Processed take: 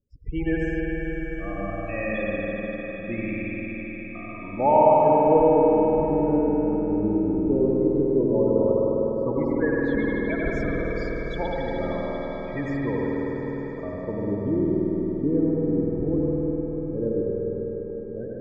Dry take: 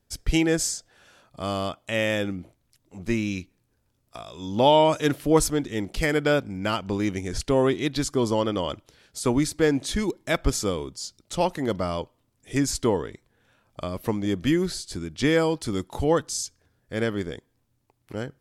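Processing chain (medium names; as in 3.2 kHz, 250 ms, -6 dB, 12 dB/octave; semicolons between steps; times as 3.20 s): 16.37–17.26 s: treble shelf 6.5 kHz +8.5 dB; loudest bins only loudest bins 16; LFO low-pass sine 0.11 Hz 320–3400 Hz; echo with a slow build-up 101 ms, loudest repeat 5, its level -16.5 dB; reverberation RT60 5.1 s, pre-delay 88 ms, DRR -6 dB; trim -7.5 dB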